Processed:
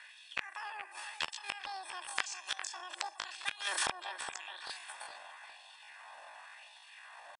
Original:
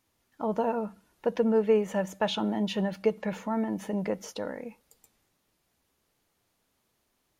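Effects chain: knee-point frequency compression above 4 kHz 4:1; high-pass 240 Hz 12 dB/octave; level-controlled noise filter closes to 1.2 kHz, open at -27 dBFS; bass shelf 360 Hz -3.5 dB; comb 2.1 ms, depth 85%; dynamic bell 550 Hz, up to -4 dB, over -35 dBFS, Q 4.3; LFO high-pass sine 0.92 Hz 370–1900 Hz; inverted gate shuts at -29 dBFS, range -32 dB; feedback echo behind a low-pass 407 ms, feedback 36%, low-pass 1.6 kHz, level -15 dB; pitch shift +10.5 st; spectrum-flattening compressor 2:1; trim +12 dB

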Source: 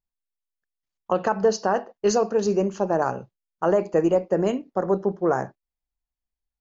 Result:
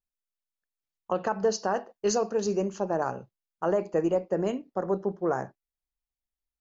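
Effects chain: 1.42–2.80 s: treble shelf 5 kHz +6.5 dB; trim -5.5 dB

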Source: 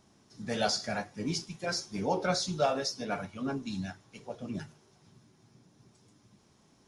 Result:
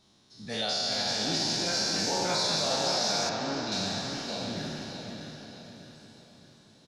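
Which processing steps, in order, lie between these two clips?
spectral sustain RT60 2.60 s; peaking EQ 3.9 kHz +14.5 dB 0.63 oct; peak limiter -15.5 dBFS, peak gain reduction 7 dB; feedback delay 615 ms, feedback 42%, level -6 dB; ever faster or slower copies 460 ms, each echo +2 st, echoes 3, each echo -6 dB; 3.29–3.72 s: distance through air 130 m; trim -5 dB

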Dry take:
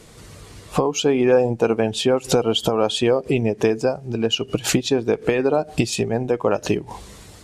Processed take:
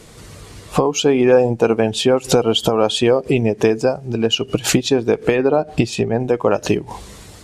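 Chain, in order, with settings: 5.36–6.20 s: treble shelf 5.4 kHz -11.5 dB; trim +3.5 dB

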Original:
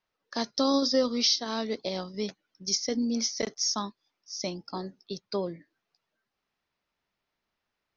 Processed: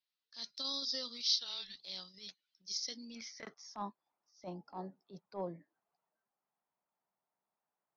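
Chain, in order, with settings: peaking EQ 160 Hz +14 dB 1.5 oct; 1.39–1.80 s: frequency shift -240 Hz; band-pass sweep 4 kHz -> 820 Hz, 2.93–3.73 s; transient shaper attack -12 dB, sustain +2 dB; trim -1 dB

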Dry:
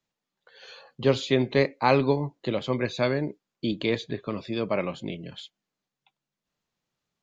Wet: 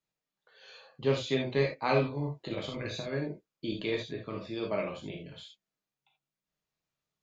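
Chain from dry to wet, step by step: 2.02–3.13 s: compressor with a negative ratio -28 dBFS, ratio -0.5; gated-style reverb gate 100 ms flat, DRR -1 dB; trim -9 dB

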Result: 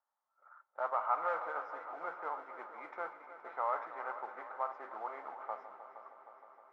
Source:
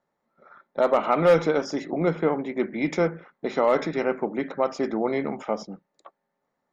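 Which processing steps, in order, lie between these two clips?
chunks repeated in reverse 233 ms, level -12.5 dB; modulation noise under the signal 14 dB; Butterworth band-pass 1.1 kHz, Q 1.5; multi-head delay 156 ms, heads second and third, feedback 67%, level -14 dB; trim -7 dB

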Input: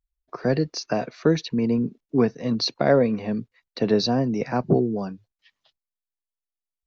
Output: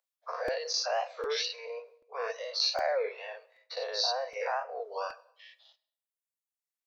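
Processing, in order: every event in the spectrogram widened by 120 ms; reverb removal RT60 1.3 s; reverse; compression 4:1, threshold -26 dBFS, peak gain reduction 13.5 dB; reverse; steep high-pass 480 Hz 96 dB/octave; on a send at -16 dB: reverberation RT60 0.75 s, pre-delay 18 ms; on the sum: crackling interface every 0.77 s, samples 128, repeat, from 0.48 s; warped record 33 1/3 rpm, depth 160 cents

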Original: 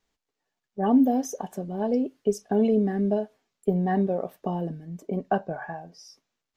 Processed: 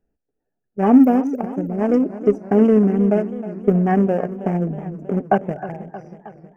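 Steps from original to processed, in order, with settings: local Wiener filter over 41 samples; Butterworth band-stop 3.9 kHz, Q 1.5; modulated delay 316 ms, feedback 63%, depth 108 cents, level -14 dB; trim +8.5 dB

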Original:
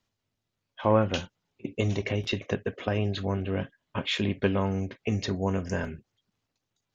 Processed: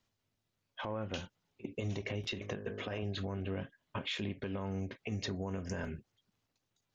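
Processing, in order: 2.26–3.03 s: de-hum 51.39 Hz, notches 34; compression 6:1, threshold -31 dBFS, peak gain reduction 14.5 dB; peak limiter -26 dBFS, peak gain reduction 8.5 dB; trim -1 dB

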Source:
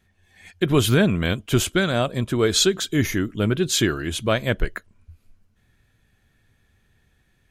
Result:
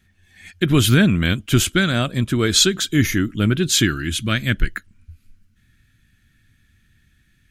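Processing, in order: high-order bell 650 Hz -8.5 dB, from 3.83 s -15.5 dB; trim +4.5 dB

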